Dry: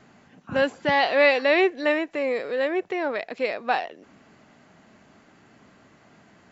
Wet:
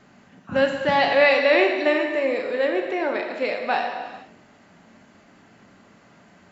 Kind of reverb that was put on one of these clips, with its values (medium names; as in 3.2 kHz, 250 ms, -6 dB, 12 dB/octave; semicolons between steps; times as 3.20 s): gated-style reverb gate 500 ms falling, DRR 2 dB